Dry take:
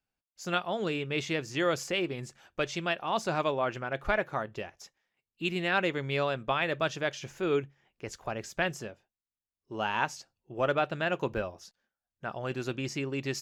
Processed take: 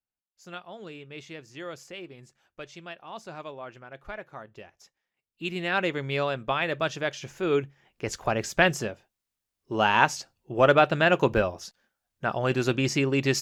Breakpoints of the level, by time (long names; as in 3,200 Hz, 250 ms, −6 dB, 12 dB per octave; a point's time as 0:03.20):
0:04.21 −10.5 dB
0:05.85 +2 dB
0:07.37 +2 dB
0:08.15 +9 dB